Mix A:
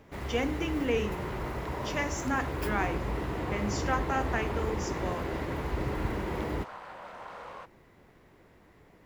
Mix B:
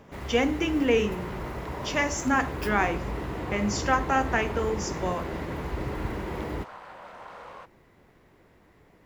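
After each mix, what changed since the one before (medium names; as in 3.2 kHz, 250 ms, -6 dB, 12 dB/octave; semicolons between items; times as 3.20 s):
speech +6.5 dB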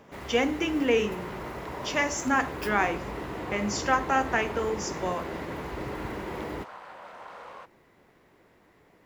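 master: add bass shelf 130 Hz -10.5 dB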